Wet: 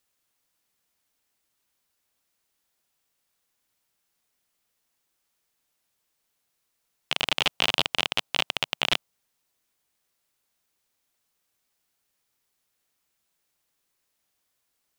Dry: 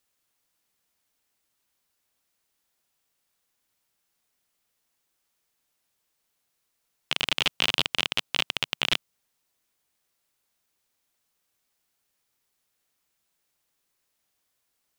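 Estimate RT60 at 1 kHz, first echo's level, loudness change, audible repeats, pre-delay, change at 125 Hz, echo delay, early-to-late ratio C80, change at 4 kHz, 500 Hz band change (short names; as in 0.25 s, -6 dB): none, none, +0.5 dB, none, none, 0.0 dB, none, none, 0.0 dB, +3.5 dB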